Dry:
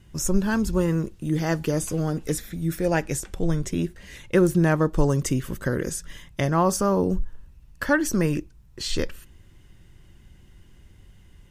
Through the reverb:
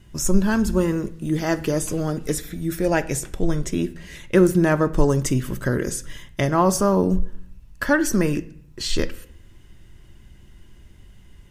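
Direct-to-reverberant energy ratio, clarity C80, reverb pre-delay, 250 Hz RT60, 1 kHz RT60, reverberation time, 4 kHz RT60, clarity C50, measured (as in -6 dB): 10.5 dB, 21.0 dB, 3 ms, 0.80 s, 0.60 s, 0.65 s, 0.50 s, 18.0 dB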